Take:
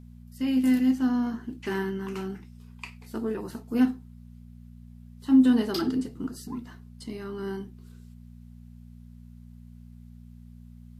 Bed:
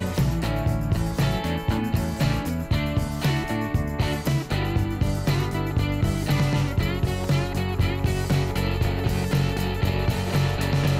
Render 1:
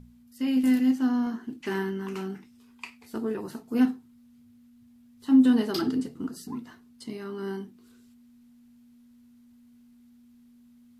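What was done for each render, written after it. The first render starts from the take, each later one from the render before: de-hum 60 Hz, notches 3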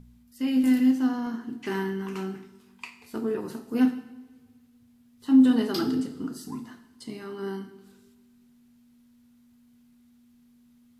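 two-slope reverb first 0.77 s, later 2 s, from -16 dB, DRR 8 dB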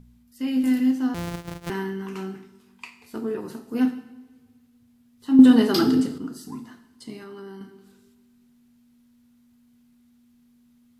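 1.14–1.7 sample sorter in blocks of 256 samples; 5.39–6.18 gain +7 dB; 7.18–7.61 compressor, threshold -36 dBFS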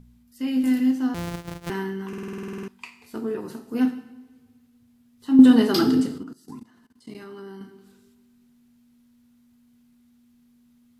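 2.08 stutter in place 0.05 s, 12 plays; 6.23–7.15 level quantiser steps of 19 dB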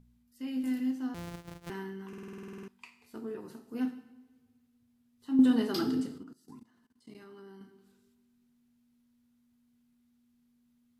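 gain -11 dB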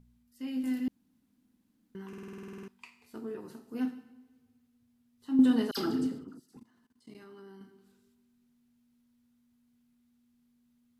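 0.88–1.95 room tone; 5.71–6.57 dispersion lows, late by 66 ms, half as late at 1900 Hz

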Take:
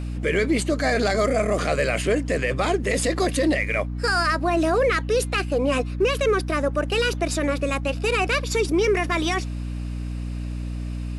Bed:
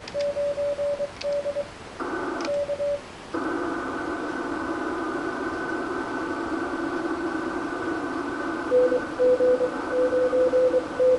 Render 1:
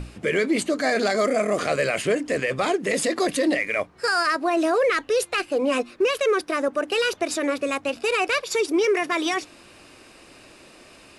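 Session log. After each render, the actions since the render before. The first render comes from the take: notches 60/120/180/240/300 Hz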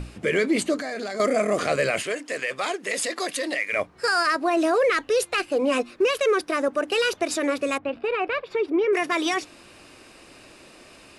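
0.77–1.2 compressor, threshold -28 dBFS; 2.03–3.73 HPF 960 Hz 6 dB/oct; 7.78–8.93 air absorption 470 m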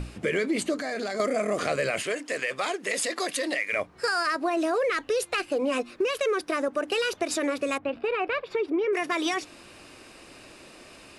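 compressor 3:1, threshold -24 dBFS, peak gain reduction 6 dB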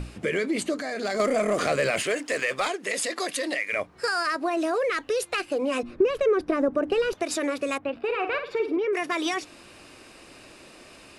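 1.04–2.68 sample leveller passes 1; 5.83–7.13 tilt -4 dB/oct; 8.03–8.78 flutter echo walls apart 8.7 m, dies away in 0.36 s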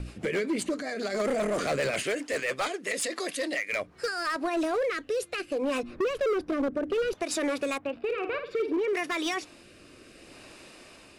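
rotary speaker horn 7.5 Hz, later 0.65 Hz, at 3.42; overloaded stage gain 23.5 dB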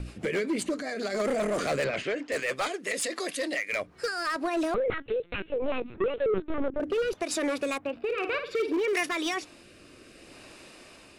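1.84–2.32 air absorption 150 m; 4.74–6.8 LPC vocoder at 8 kHz pitch kept; 8.17–9.09 high shelf 2300 Hz +9.5 dB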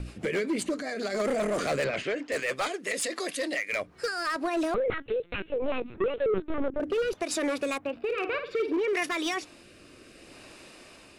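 8.24–9.02 high shelf 5100 Hz -11 dB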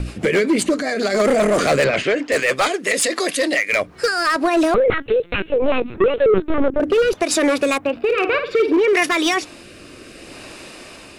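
gain +12 dB

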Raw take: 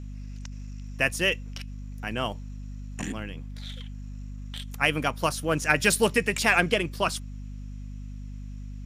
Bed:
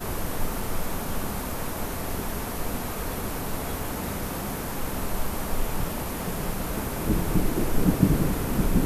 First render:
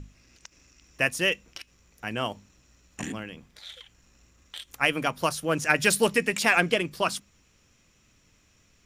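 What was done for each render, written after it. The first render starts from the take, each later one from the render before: notches 50/100/150/200/250 Hz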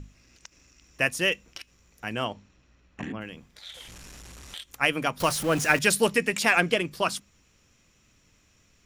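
2.24–3.2 LPF 5500 Hz -> 2200 Hz; 3.74–4.56 delta modulation 64 kbps, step -39.5 dBFS; 5.2–5.79 zero-crossing step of -29.5 dBFS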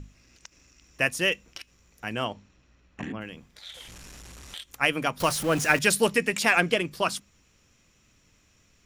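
nothing audible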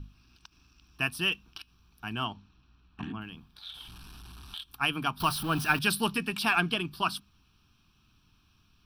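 fixed phaser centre 2000 Hz, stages 6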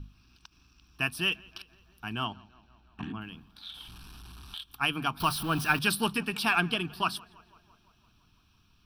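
tape echo 0.168 s, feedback 72%, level -23.5 dB, low-pass 2900 Hz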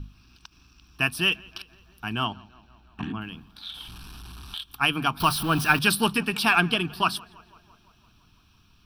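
gain +5.5 dB

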